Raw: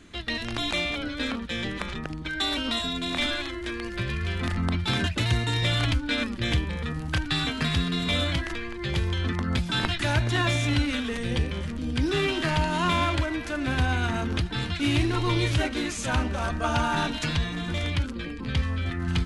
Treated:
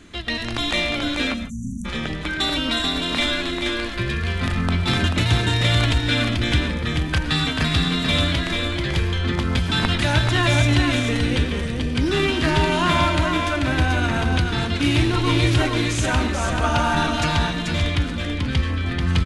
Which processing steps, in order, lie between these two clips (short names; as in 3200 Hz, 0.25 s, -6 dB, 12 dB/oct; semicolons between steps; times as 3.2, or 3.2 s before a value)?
echo 0.437 s -4.5 dB; spectral delete 1.34–1.85, 270–5700 Hz; reverb, pre-delay 60 ms, DRR 11.5 dB; gain +4.5 dB